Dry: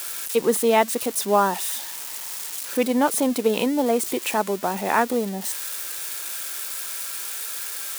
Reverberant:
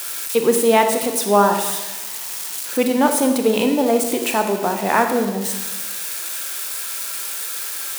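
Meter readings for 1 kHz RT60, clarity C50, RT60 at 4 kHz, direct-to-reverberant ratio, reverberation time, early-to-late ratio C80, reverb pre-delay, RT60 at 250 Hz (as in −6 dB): 1.1 s, 6.5 dB, 1.0 s, 5.0 dB, 1.1 s, 8.5 dB, 27 ms, 1.3 s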